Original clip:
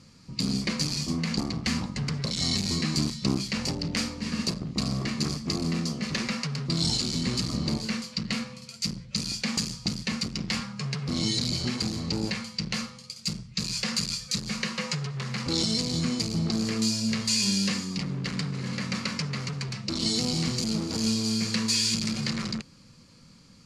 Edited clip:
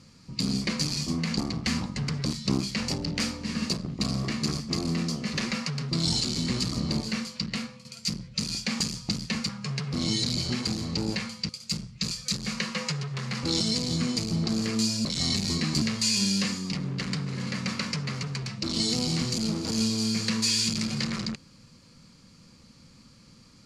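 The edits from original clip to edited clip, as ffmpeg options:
-filter_complex "[0:a]asplit=8[a][b][c][d][e][f][g][h];[a]atrim=end=2.262[i];[b]atrim=start=3.028:end=8.62,asetpts=PTS-STARTPTS,afade=t=out:st=5.112:d=0.48:silence=0.446684[j];[c]atrim=start=8.62:end=10.262,asetpts=PTS-STARTPTS,afade=t=in:d=0.004:c=hsin:silence=0.446684[k];[d]atrim=start=10.638:end=12.642[l];[e]atrim=start=13.048:end=13.672[m];[f]atrim=start=14.138:end=17.082[n];[g]atrim=start=2.258:end=3.032[o];[h]atrim=start=17.078[p];[j][k]concat=n=2:v=0:a=1[q];[i][q]acrossfade=d=0.004:c1=hsin:c2=hsin[r];[r][l]acrossfade=d=0.004:c1=hsin:c2=hsin[s];[s][m]acrossfade=d=0.004:c1=hsin:c2=hsin[t];[t][n]acrossfade=d=0.004:c1=hsin:c2=hsin[u];[u][o]acrossfade=d=0.004:c1=hsin:c2=hsin[v];[v][p]acrossfade=d=0.004:c1=hsin:c2=hsin"

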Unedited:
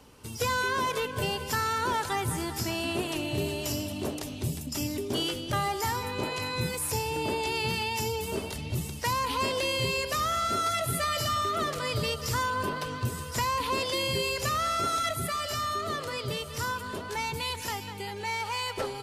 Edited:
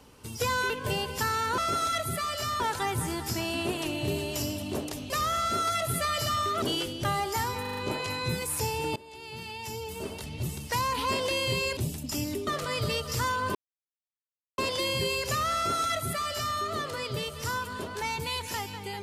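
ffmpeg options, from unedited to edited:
-filter_complex "[0:a]asplit=15[a][b][c][d][e][f][g][h][i][j][k][l][m][n][o];[a]atrim=end=0.702[p];[b]atrim=start=1.018:end=1.902[q];[c]atrim=start=14.688:end=15.712[r];[d]atrim=start=1.898:end=4.402[s];[e]atrim=start=10.088:end=11.612[t];[f]atrim=start=5.098:end=6.132[u];[g]atrim=start=6.088:end=6.132[v];[h]atrim=start=6.088:end=6.132[w];[i]atrim=start=6.088:end=6.132[x];[j]atrim=start=6.088:end=7.28,asetpts=PTS-STARTPTS,afade=t=out:st=1.188:d=0.004:c=hsin:silence=0.0707946[y];[k]atrim=start=7.28:end=10.092,asetpts=PTS-STARTPTS,afade=t=in:d=1.8:silence=0.0707946[z];[l]atrim=start=4.398:end=5.102[aa];[m]atrim=start=11.608:end=12.69,asetpts=PTS-STARTPTS,afade=t=out:st=1.078:d=0.004:c=hsin[ab];[n]atrim=start=12.69:end=13.72,asetpts=PTS-STARTPTS,volume=0[ac];[o]atrim=start=13.72,asetpts=PTS-STARTPTS,afade=t=in:d=0.004:c=hsin[ad];[p][q]acrossfade=d=0.004:c1=hsin:c2=hsin[ae];[ae][r]acrossfade=d=0.004:c1=hsin:c2=hsin[af];[af][s]acrossfade=d=0.004:c1=hsin:c2=hsin[ag];[ag][t]acrossfade=d=0.004:c1=hsin:c2=hsin[ah];[ah][u]acrossfade=d=0.004:c1=hsin:c2=hsin[ai];[ai][v]acrossfade=d=0.004:c1=hsin:c2=hsin[aj];[aj][w]acrossfade=d=0.004:c1=hsin:c2=hsin[ak];[ak][x]acrossfade=d=0.004:c1=hsin:c2=hsin[al];[y][z]concat=n=2:v=0:a=1[am];[al][am]acrossfade=d=0.004:c1=hsin:c2=hsin[an];[an][aa]acrossfade=d=0.004:c1=hsin:c2=hsin[ao];[ab][ac][ad]concat=n=3:v=0:a=1[ap];[ao][ap]acrossfade=d=0.004:c1=hsin:c2=hsin"

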